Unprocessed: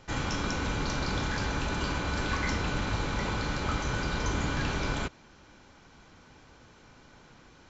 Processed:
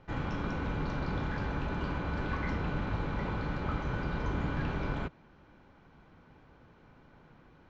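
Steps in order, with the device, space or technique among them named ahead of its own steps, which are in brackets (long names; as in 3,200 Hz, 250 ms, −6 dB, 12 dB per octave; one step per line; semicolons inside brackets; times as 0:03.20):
phone in a pocket (low-pass filter 3,300 Hz 12 dB per octave; parametric band 160 Hz +4 dB 0.33 octaves; high-shelf EQ 2,100 Hz −9 dB)
level −2.5 dB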